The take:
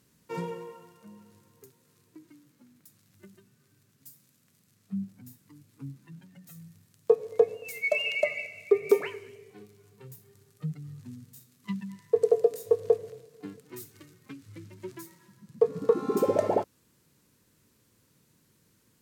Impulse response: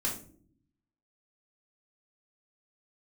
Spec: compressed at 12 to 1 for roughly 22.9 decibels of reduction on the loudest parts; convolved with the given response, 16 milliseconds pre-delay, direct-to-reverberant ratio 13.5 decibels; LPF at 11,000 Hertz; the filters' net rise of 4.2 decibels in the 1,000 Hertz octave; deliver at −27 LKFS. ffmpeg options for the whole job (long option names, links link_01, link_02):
-filter_complex "[0:a]lowpass=11000,equalizer=frequency=1000:width_type=o:gain=5.5,acompressor=threshold=-39dB:ratio=12,asplit=2[link_01][link_02];[1:a]atrim=start_sample=2205,adelay=16[link_03];[link_02][link_03]afir=irnorm=-1:irlink=0,volume=-18.5dB[link_04];[link_01][link_04]amix=inputs=2:normalize=0,volume=19.5dB"